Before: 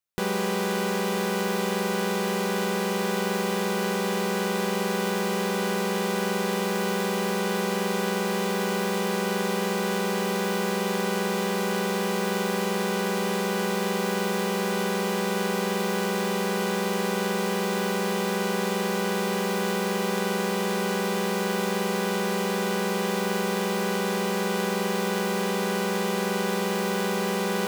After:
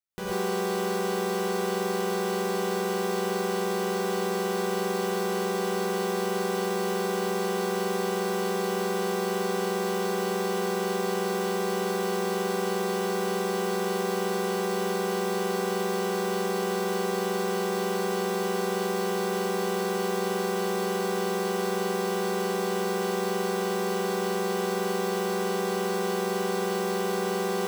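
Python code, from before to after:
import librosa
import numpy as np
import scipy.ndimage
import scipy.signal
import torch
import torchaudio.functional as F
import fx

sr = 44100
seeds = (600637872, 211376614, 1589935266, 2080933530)

y = fx.rev_gated(x, sr, seeds[0], gate_ms=160, shape='rising', drr_db=-5.0)
y = y * librosa.db_to_amplitude(-8.5)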